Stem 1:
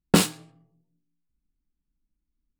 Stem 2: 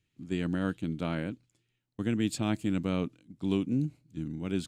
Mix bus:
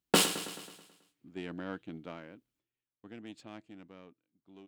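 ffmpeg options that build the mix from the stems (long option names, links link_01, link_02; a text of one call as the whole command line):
ffmpeg -i stem1.wav -i stem2.wav -filter_complex "[0:a]highpass=61,equalizer=frequency=3100:width_type=o:width=0.25:gain=6,volume=3dB,asplit=2[link_01][link_02];[link_02]volume=-13.5dB[link_03];[1:a]adynamicsmooth=sensitivity=3:basefreq=3000,asoftclip=type=tanh:threshold=-19.5dB,adelay=1050,volume=-3dB,afade=type=out:start_time=1.95:duration=0.27:silence=0.398107,afade=type=out:start_time=3.34:duration=0.79:silence=0.398107[link_04];[link_03]aecho=0:1:108|216|324|432|540|648|756|864:1|0.52|0.27|0.141|0.0731|0.038|0.0198|0.0103[link_05];[link_01][link_04][link_05]amix=inputs=3:normalize=0,bass=frequency=250:gain=-13,treble=frequency=4000:gain=1,alimiter=limit=-11.5dB:level=0:latency=1:release=493" out.wav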